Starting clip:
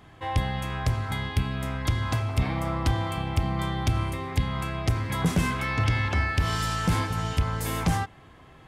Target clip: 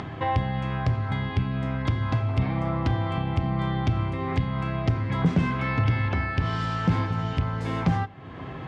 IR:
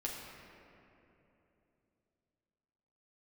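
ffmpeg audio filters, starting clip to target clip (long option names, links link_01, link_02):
-filter_complex "[0:a]aemphasis=mode=reproduction:type=bsi,acompressor=mode=upward:threshold=-14dB:ratio=2.5,highpass=150,lowpass=5000,asplit=2[link_01][link_02];[1:a]atrim=start_sample=2205,atrim=end_sample=3969[link_03];[link_02][link_03]afir=irnorm=-1:irlink=0,volume=-10dB[link_04];[link_01][link_04]amix=inputs=2:normalize=0,volume=-3.5dB"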